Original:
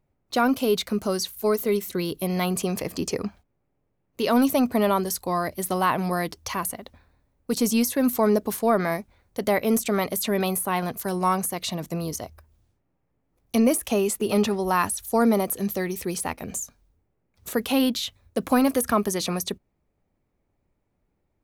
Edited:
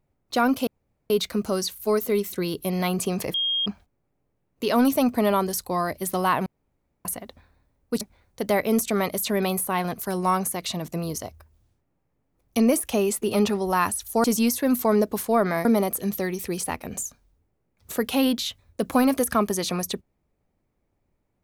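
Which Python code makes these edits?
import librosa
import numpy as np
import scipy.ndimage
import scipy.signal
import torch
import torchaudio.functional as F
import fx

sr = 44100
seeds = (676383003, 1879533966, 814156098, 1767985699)

y = fx.edit(x, sr, fx.insert_room_tone(at_s=0.67, length_s=0.43),
    fx.bleep(start_s=2.91, length_s=0.32, hz=3240.0, db=-21.5),
    fx.room_tone_fill(start_s=6.03, length_s=0.59),
    fx.move(start_s=7.58, length_s=1.41, to_s=15.22), tone=tone)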